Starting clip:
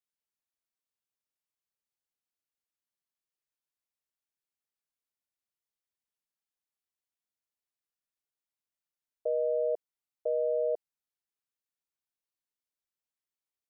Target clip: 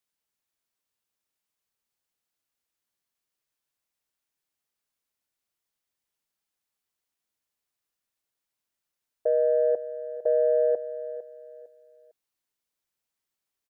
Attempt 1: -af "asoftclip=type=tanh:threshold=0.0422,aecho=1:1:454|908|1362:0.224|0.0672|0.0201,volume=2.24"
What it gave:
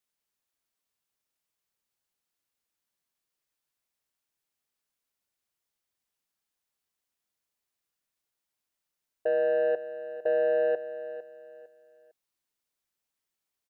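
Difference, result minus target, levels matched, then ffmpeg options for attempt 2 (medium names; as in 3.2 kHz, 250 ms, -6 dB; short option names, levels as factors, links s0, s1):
saturation: distortion +16 dB
-af "asoftclip=type=tanh:threshold=0.133,aecho=1:1:454|908|1362:0.224|0.0672|0.0201,volume=2.24"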